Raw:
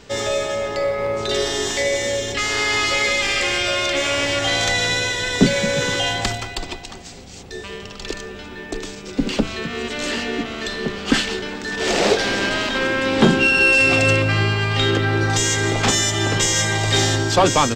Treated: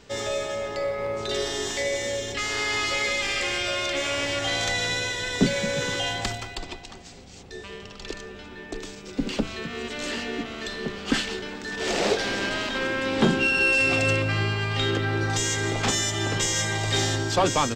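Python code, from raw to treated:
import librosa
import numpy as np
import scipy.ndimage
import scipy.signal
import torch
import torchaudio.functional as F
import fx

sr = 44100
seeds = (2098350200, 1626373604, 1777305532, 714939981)

y = fx.high_shelf(x, sr, hz=12000.0, db=-10.0, at=(6.56, 8.79))
y = y * 10.0 ** (-6.5 / 20.0)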